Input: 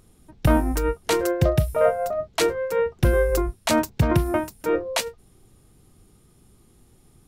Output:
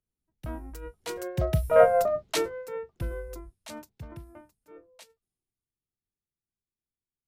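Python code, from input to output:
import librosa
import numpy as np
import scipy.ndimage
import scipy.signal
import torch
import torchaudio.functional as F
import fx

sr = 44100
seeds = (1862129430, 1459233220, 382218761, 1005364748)

y = fx.doppler_pass(x, sr, speed_mps=10, closest_m=1.9, pass_at_s=1.94)
y = fx.band_widen(y, sr, depth_pct=40)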